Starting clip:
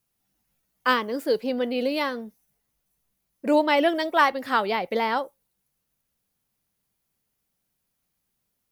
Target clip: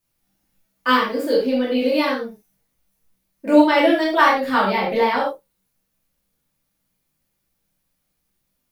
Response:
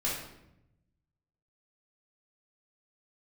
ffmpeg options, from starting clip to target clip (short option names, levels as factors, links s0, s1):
-filter_complex "[0:a]asettb=1/sr,asplit=3[s0][s1][s2];[s0]atrim=end=4.434[s3];[s1]atrim=start=4.43:end=5.14,asetpts=PTS-STARTPTS,afade=t=in:d=0.004:c=qsin,afade=t=out:st=0.706:d=0.004:c=qsin,lowshelf=f=200:g=8.5[s4];[s2]atrim=start=5.136[s5];[s3][s4]acrossfade=d=0.004:c1=hsin:c2=qsin[s6];[s6][s5]acrossfade=d=0.004:c1=qsin:c2=hsin[s7];[1:a]atrim=start_sample=2205,afade=t=out:st=0.17:d=0.01,atrim=end_sample=7938[s8];[s7][s8]afir=irnorm=-1:irlink=0,volume=0.891"